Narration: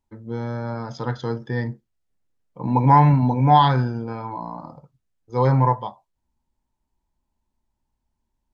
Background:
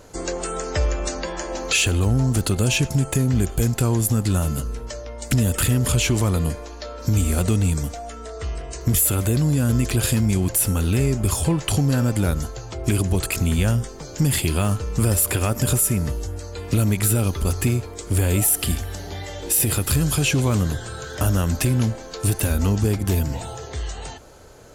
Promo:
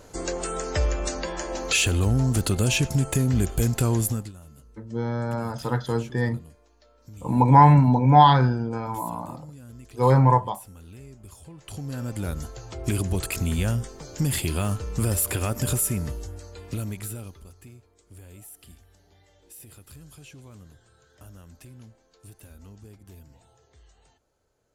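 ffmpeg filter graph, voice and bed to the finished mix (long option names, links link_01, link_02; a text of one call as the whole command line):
ffmpeg -i stem1.wav -i stem2.wav -filter_complex "[0:a]adelay=4650,volume=0.5dB[link_01];[1:a]volume=17.5dB,afade=type=out:start_time=3.99:duration=0.33:silence=0.0749894,afade=type=in:start_time=11.53:duration=1.24:silence=0.1,afade=type=out:start_time=15.84:duration=1.65:silence=0.0794328[link_02];[link_01][link_02]amix=inputs=2:normalize=0" out.wav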